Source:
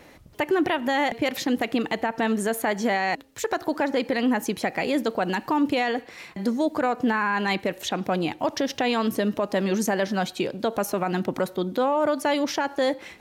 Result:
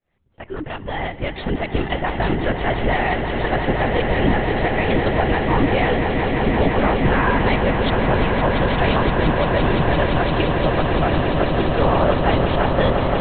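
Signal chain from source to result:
fade in at the beginning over 1.90 s
linear-prediction vocoder at 8 kHz whisper
echo that builds up and dies away 172 ms, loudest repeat 8, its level −9 dB
level +3.5 dB

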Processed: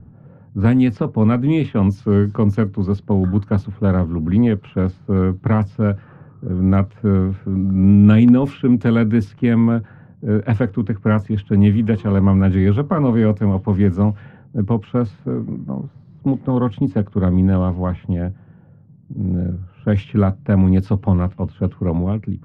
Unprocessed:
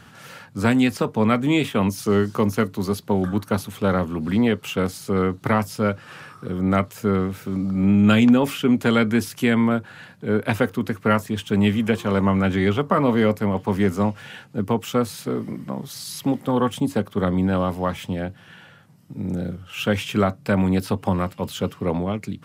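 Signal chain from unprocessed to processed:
RIAA equalisation playback
low-pass that shuts in the quiet parts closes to 520 Hz, open at −7.5 dBFS
level −3 dB

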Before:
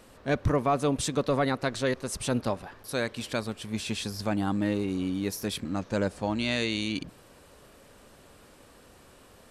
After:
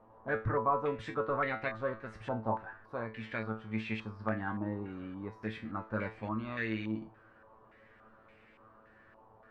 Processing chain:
tuned comb filter 110 Hz, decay 0.28 s, harmonics all, mix 90%
low-pass on a step sequencer 3.5 Hz 930–2,200 Hz

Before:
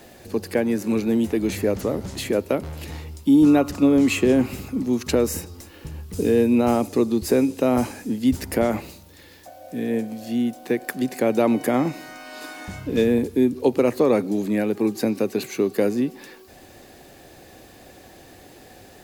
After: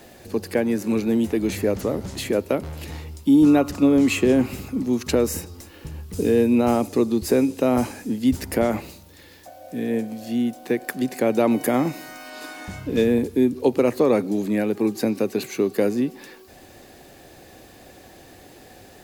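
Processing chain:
0:11.51–0:12.30: high-shelf EQ 9,300 Hz +8.5 dB

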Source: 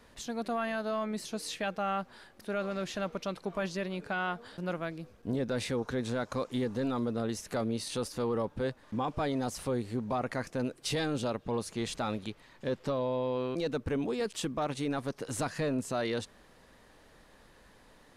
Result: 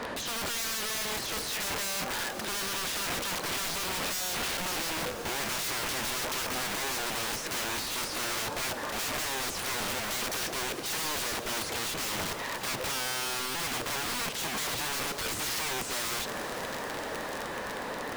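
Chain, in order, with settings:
mid-hump overdrive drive 30 dB, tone 1,000 Hz, clips at −23.5 dBFS
wrap-around overflow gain 35 dB
feedback delay with all-pass diffusion 464 ms, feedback 77%, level −14.5 dB
level +7 dB

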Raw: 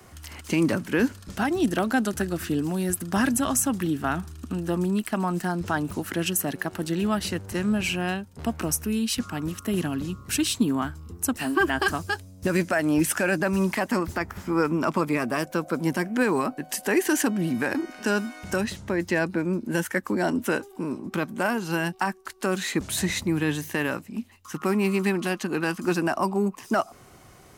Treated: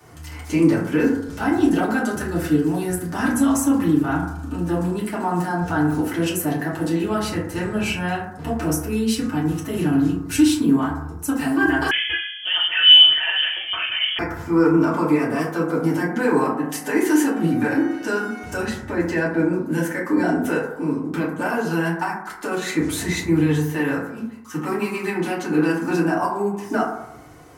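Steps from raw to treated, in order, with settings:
brickwall limiter −15.5 dBFS, peak gain reduction 4 dB
feedback delay network reverb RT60 0.81 s, low-frequency decay 0.85×, high-frequency decay 0.3×, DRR −8.5 dB
0:11.91–0:14.19: voice inversion scrambler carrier 3,300 Hz
level −4.5 dB

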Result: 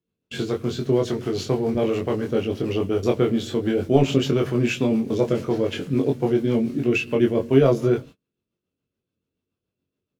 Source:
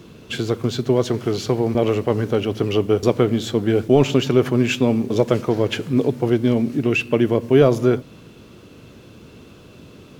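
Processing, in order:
noise gate −33 dBFS, range −37 dB
rotating-speaker cabinet horn 7 Hz
ambience of single reflections 22 ms −3 dB, 33 ms −11 dB
level −3 dB

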